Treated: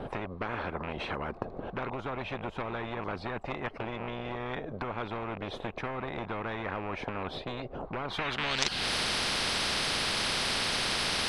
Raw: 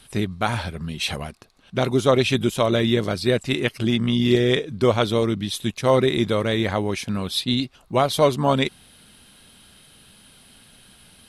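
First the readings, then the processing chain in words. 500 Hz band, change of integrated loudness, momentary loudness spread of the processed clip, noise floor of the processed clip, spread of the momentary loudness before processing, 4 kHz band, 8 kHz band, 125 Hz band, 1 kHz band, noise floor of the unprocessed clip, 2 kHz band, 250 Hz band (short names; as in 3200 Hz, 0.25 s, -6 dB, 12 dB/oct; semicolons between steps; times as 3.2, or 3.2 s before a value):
-15.5 dB, -11.0 dB, 10 LU, -45 dBFS, 8 LU, -4.0 dB, -2.0 dB, -15.5 dB, -7.5 dB, -53 dBFS, -3.5 dB, -16.0 dB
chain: rattling part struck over -25 dBFS, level -23 dBFS; compressor 6:1, threshold -31 dBFS, peak gain reduction 18 dB; sine folder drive 6 dB, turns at -17.5 dBFS; low-pass sweep 480 Hz -> 4100 Hz, 8.01–8.62; spectral compressor 10:1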